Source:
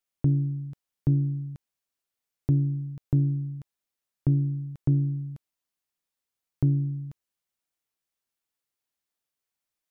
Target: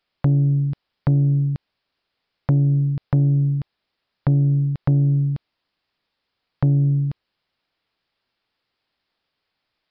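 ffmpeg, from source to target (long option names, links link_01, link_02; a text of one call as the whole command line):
ffmpeg -i in.wav -af "acompressor=threshold=-28dB:ratio=5,aresample=11025,aeval=exprs='0.141*sin(PI/2*1.78*val(0)/0.141)':channel_layout=same,aresample=44100,volume=6dB" out.wav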